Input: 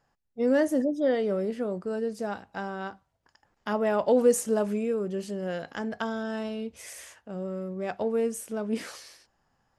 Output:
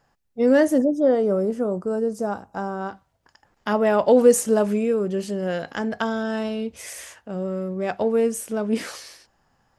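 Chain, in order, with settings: 0.78–2.89 s: high-order bell 2.8 kHz -11.5 dB; trim +6.5 dB

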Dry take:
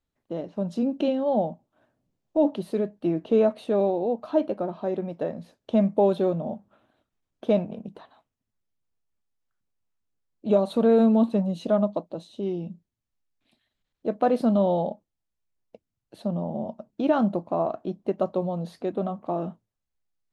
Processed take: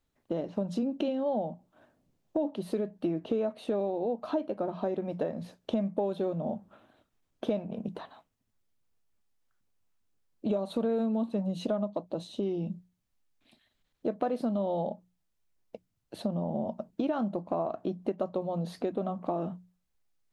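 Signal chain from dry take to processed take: hum notches 60/120/180 Hz; compression 5:1, threshold -33 dBFS, peak gain reduction 16 dB; trim +4.5 dB

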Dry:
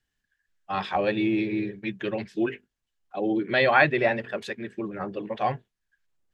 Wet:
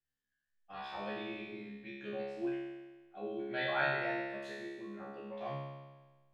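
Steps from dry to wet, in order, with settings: feedback comb 69 Hz, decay 1.3 s, harmonics all, mix 100%; trim +2.5 dB

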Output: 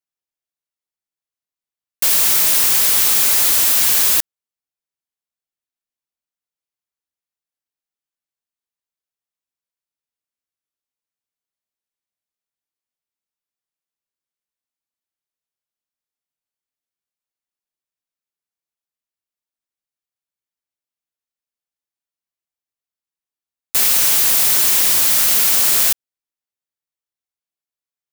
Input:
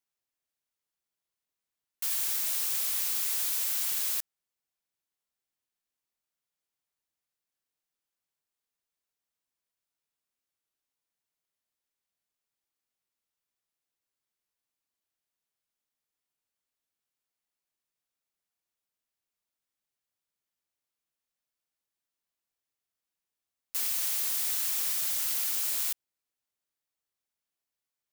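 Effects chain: waveshaping leveller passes 5; trim +5.5 dB

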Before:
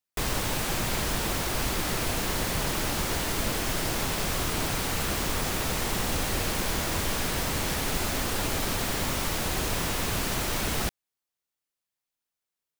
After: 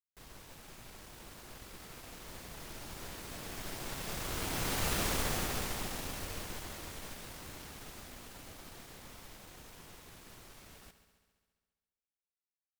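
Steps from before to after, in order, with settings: one-sided wavefolder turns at -26 dBFS; Doppler pass-by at 5.00 s, 9 m/s, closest 3.8 m; multi-head delay 68 ms, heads first and second, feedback 64%, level -15.5 dB; trim -3 dB

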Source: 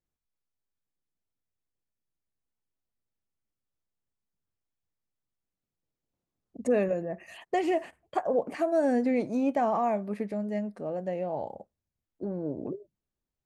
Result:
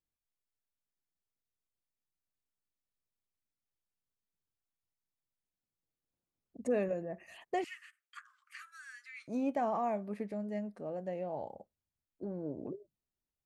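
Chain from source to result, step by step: 7.64–9.28 s: steep high-pass 1.2 kHz 96 dB/octave; trim -6.5 dB

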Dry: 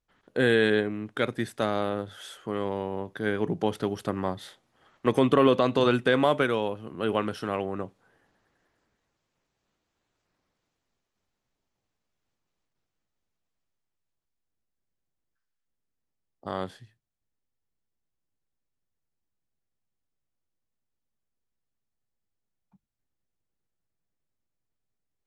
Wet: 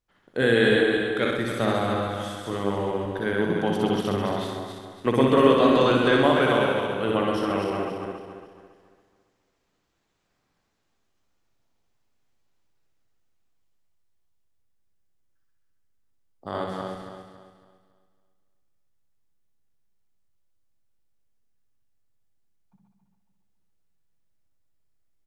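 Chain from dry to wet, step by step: backward echo that repeats 139 ms, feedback 60%, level -3.5 dB; 3.84–4.45 s: peaking EQ 3 kHz +6.5 dB 0.81 oct; reverse bouncing-ball echo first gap 60 ms, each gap 1.15×, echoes 5

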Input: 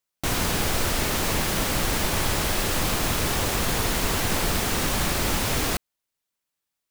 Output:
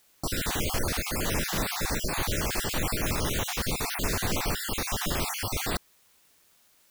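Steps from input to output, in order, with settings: random holes in the spectrogram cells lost 39%; crossover distortion -53 dBFS; word length cut 10-bit, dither triangular; trim -2.5 dB

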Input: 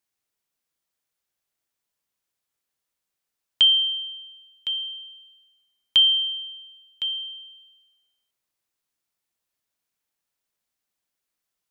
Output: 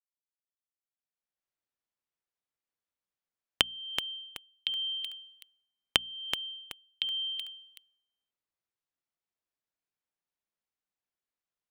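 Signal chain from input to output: recorder AGC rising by 21 dB/s; low-pass 2.4 kHz 6 dB/octave; hum notches 60/120/180/240 Hz; expander -31 dBFS; compression 3:1, threshold -25 dBFS, peak gain reduction 21.5 dB; bit-crushed delay 377 ms, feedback 35%, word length 5-bit, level -8 dB; trim -4.5 dB

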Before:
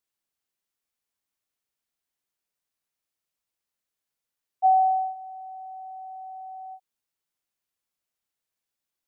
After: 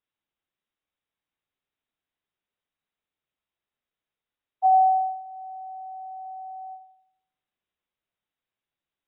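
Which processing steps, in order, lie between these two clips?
6.25–6.68 s: band-pass filter 690 Hz, Q 0.89; filtered feedback delay 86 ms, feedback 58%, low-pass 810 Hz, level -6.5 dB; AAC 16 kbps 22.05 kHz

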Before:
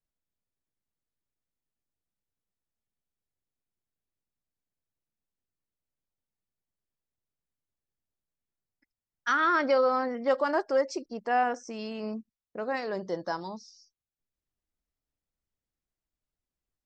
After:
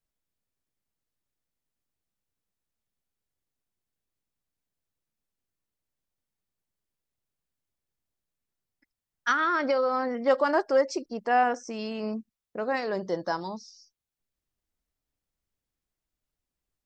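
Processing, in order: 9.31–10.22 s: compression, threshold -25 dBFS, peak gain reduction 5.5 dB; trim +3 dB

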